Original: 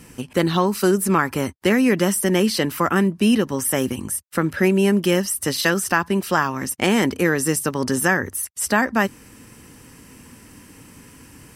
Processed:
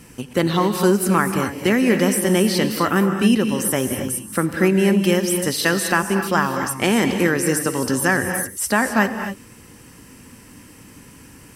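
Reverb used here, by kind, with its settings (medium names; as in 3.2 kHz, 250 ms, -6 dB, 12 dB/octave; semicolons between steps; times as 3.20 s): gated-style reverb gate 290 ms rising, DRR 6.5 dB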